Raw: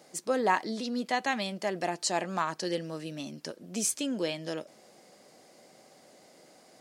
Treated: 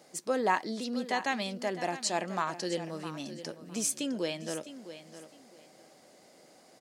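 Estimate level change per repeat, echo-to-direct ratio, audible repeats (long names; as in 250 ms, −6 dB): −13.5 dB, −13.0 dB, 2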